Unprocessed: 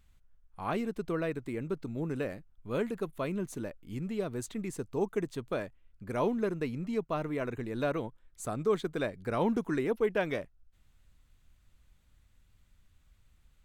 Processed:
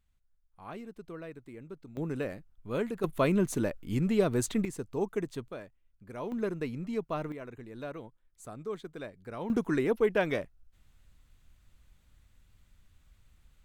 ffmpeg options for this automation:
-af "asetnsamples=n=441:p=0,asendcmd='1.97 volume volume 0dB;3.04 volume volume 8dB;4.65 volume volume -0.5dB;5.48 volume volume -8.5dB;6.32 volume volume -1dB;7.32 volume volume -9dB;9.5 volume volume 2.5dB',volume=-10.5dB"

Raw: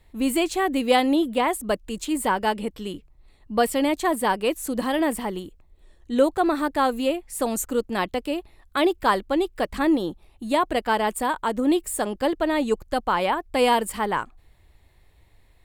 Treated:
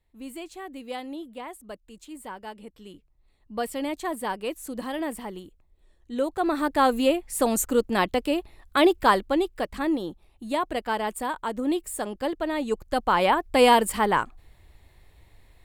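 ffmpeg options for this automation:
-af "volume=9.5dB,afade=t=in:st=2.52:d=1.37:silence=0.375837,afade=t=in:st=6.25:d=0.68:silence=0.334965,afade=t=out:st=8.98:d=0.75:silence=0.446684,afade=t=in:st=12.65:d=0.66:silence=0.421697"

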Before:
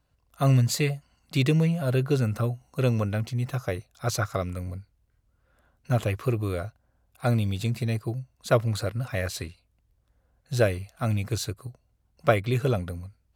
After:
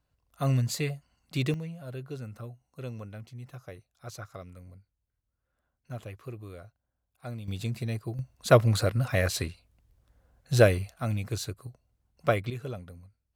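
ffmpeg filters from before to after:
-af "asetnsamples=n=441:p=0,asendcmd='1.54 volume volume -15dB;7.48 volume volume -5dB;8.19 volume volume 3dB;10.94 volume volume -4dB;12.5 volume volume -12.5dB',volume=-5.5dB"

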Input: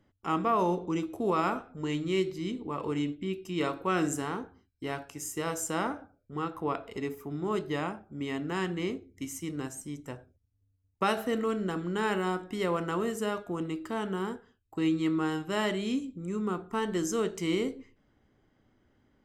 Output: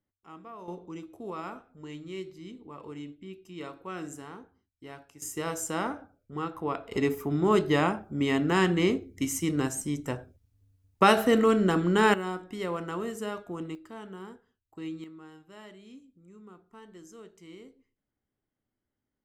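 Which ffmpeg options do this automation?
-af "asetnsamples=n=441:p=0,asendcmd='0.68 volume volume -10dB;5.22 volume volume 0dB;6.92 volume volume 8dB;12.14 volume volume -3dB;13.75 volume volume -10dB;15.04 volume volume -19dB',volume=-18.5dB"

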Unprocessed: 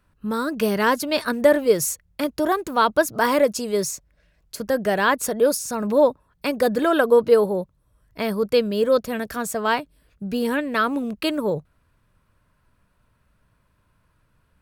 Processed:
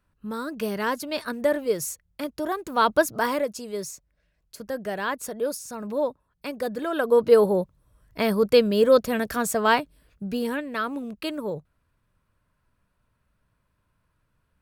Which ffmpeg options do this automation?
-af "volume=10dB,afade=t=in:st=2.61:d=0.31:silence=0.473151,afade=t=out:st=2.92:d=0.53:silence=0.375837,afade=t=in:st=6.92:d=0.58:silence=0.298538,afade=t=out:st=9.8:d=0.84:silence=0.375837"

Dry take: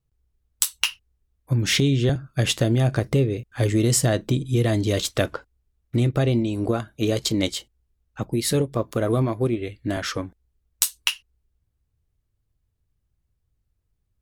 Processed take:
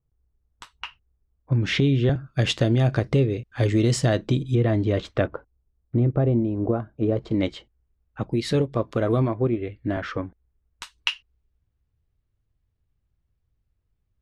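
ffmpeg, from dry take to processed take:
-af "asetnsamples=n=441:p=0,asendcmd='1.52 lowpass f 2800;2.24 lowpass f 4700;4.55 lowpass f 1900;5.27 lowpass f 1000;7.31 lowpass f 2100;8.21 lowpass f 3900;9.28 lowpass f 2000;10.98 lowpass f 3600',lowpass=1.3k"

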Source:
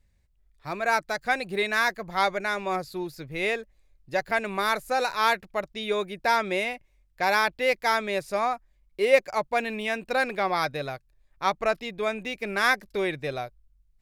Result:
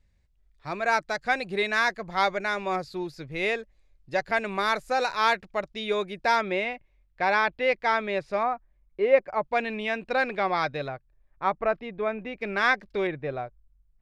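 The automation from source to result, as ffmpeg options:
-af "asetnsamples=n=441:p=0,asendcmd='6.41 lowpass f 3200;8.43 lowpass f 1700;9.44 lowpass f 4100;10.88 lowpass f 1800;12.41 lowpass f 3800;13.07 lowpass f 1700',lowpass=6.7k"

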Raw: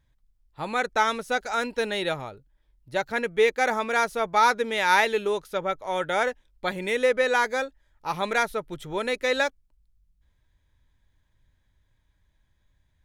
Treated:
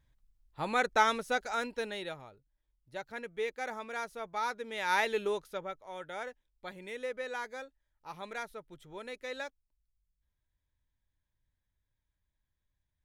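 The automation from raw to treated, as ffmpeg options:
-af "volume=5.5dB,afade=t=out:st=0.97:d=1.19:silence=0.266073,afade=t=in:st=4.62:d=0.63:silence=0.375837,afade=t=out:st=5.25:d=0.55:silence=0.316228"

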